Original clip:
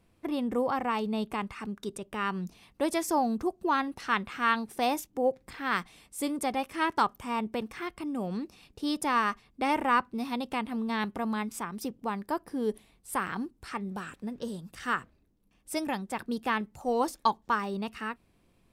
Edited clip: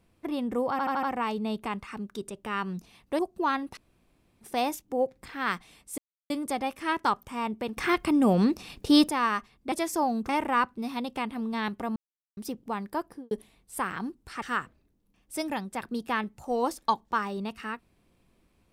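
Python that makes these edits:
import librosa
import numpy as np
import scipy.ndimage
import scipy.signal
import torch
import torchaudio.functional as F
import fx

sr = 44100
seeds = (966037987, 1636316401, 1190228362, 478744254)

y = fx.studio_fade_out(x, sr, start_s=12.42, length_s=0.25)
y = fx.edit(y, sr, fx.stutter(start_s=0.71, slice_s=0.08, count=5),
    fx.move(start_s=2.87, length_s=0.57, to_s=9.65),
    fx.room_tone_fill(start_s=4.02, length_s=0.64),
    fx.insert_silence(at_s=6.23, length_s=0.32),
    fx.clip_gain(start_s=7.7, length_s=1.32, db=11.5),
    fx.silence(start_s=11.32, length_s=0.41),
    fx.cut(start_s=13.78, length_s=1.01), tone=tone)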